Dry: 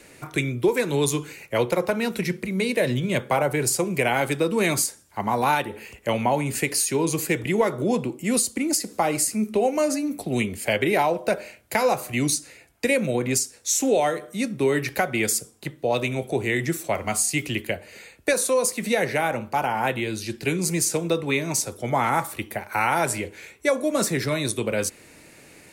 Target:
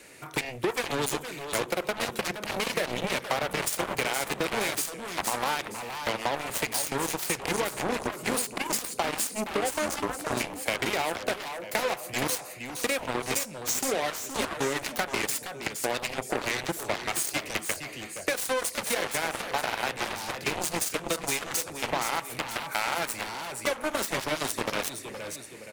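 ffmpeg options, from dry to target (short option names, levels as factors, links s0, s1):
-af "asoftclip=type=tanh:threshold=0.211,aecho=1:1:469|938|1407|1876:0.447|0.143|0.0457|0.0146,aeval=exprs='0.266*(cos(1*acos(clip(val(0)/0.266,-1,1)))-cos(1*PI/2))+0.075*(cos(7*acos(clip(val(0)/0.266,-1,1)))-cos(7*PI/2))':c=same,lowshelf=f=290:g=-8,acompressor=threshold=0.0631:ratio=6"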